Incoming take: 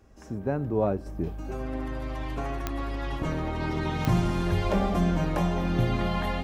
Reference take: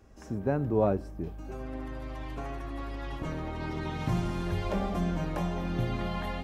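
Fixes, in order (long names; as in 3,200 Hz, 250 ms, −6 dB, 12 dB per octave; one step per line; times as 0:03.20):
click removal
level correction −5.5 dB, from 0:01.06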